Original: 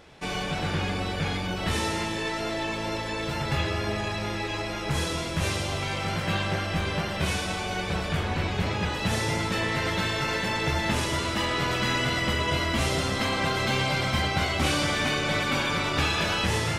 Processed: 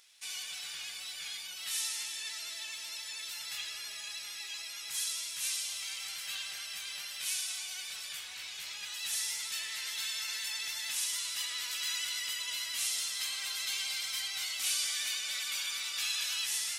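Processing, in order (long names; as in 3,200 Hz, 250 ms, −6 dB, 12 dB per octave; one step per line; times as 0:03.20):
first-order pre-emphasis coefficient 0.97
pitch vibrato 13 Hz 34 cents
tilt shelving filter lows −10 dB, about 1,200 Hz
level −6 dB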